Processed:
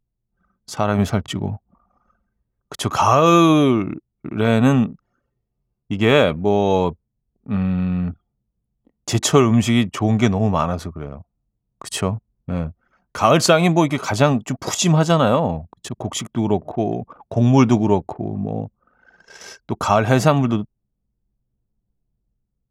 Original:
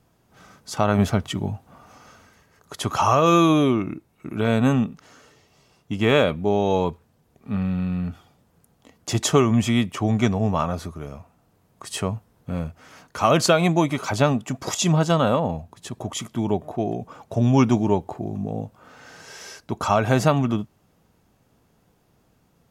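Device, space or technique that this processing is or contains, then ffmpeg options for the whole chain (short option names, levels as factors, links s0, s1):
voice memo with heavy noise removal: -af "anlmdn=0.631,dynaudnorm=f=540:g=5:m=2.24"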